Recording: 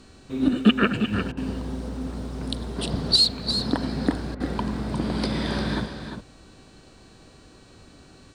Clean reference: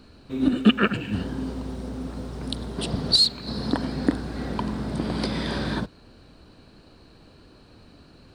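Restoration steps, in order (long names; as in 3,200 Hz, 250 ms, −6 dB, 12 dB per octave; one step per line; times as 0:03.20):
hum removal 380.5 Hz, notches 24
repair the gap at 0:01.32/0:04.35, 50 ms
echo removal 351 ms −8.5 dB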